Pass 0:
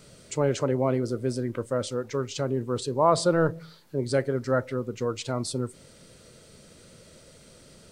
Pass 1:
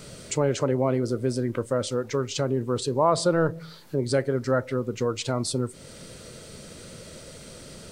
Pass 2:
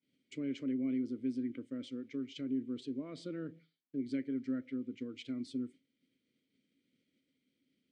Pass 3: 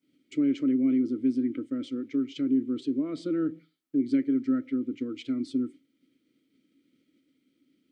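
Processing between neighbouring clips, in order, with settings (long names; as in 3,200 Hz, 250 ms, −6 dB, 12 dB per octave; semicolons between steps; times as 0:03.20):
downward compressor 1.5 to 1, threshold −41 dBFS, peak gain reduction 9.5 dB; level +8.5 dB
downward expander −30 dBFS; formant filter i; level −2.5 dB
hollow resonant body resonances 310/1,300 Hz, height 12 dB, ringing for 45 ms; level +5 dB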